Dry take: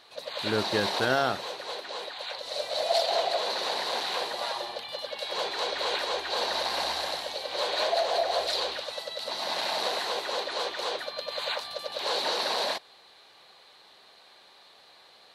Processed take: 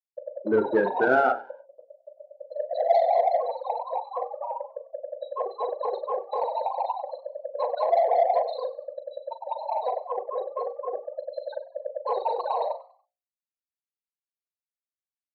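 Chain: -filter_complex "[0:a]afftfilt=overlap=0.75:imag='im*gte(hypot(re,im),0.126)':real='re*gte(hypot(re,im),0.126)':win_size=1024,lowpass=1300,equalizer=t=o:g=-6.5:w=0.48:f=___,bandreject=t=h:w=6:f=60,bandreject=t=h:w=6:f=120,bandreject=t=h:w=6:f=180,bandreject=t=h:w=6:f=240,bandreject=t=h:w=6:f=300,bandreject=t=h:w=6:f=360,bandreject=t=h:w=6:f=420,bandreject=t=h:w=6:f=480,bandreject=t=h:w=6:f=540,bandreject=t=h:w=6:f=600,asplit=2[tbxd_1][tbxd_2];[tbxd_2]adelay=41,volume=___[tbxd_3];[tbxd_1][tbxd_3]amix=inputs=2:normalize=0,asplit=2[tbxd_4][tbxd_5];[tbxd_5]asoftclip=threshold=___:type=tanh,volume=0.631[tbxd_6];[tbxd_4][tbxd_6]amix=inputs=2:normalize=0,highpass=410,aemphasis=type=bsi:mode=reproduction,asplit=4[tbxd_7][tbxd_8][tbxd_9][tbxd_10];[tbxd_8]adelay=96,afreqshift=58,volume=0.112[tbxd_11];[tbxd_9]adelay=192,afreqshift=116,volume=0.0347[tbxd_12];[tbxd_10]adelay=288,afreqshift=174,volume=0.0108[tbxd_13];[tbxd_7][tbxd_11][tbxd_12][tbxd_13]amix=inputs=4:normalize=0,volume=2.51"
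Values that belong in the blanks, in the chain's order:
590, 0.335, 0.0224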